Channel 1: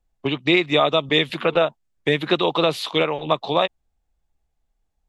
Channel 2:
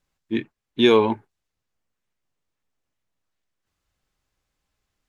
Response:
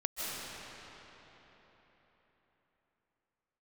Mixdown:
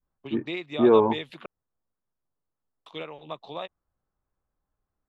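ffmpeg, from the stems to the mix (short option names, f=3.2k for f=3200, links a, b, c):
-filter_complex "[0:a]volume=-17dB,asplit=3[a][b][c];[a]atrim=end=1.46,asetpts=PTS-STARTPTS,afade=t=out:st=1.456:d=0.004:c=hsin[d];[b]atrim=start=1.46:end=2.86,asetpts=PTS-STARTPTS,volume=0[e];[c]atrim=start=2.86,asetpts=PTS-STARTPTS,afade=t=in:d=0.004:c=hsin[f];[d][e][f]concat=n=3:v=0:a=1[g];[1:a]lowpass=f=1.4k:w=0.5412,lowpass=f=1.4k:w=1.3066,volume=-4dB[h];[g][h]amix=inputs=2:normalize=0,adynamicequalizer=threshold=0.0224:dfrequency=690:dqfactor=0.7:tfrequency=690:tqfactor=0.7:attack=5:release=100:ratio=0.375:range=2:mode=boostabove:tftype=bell"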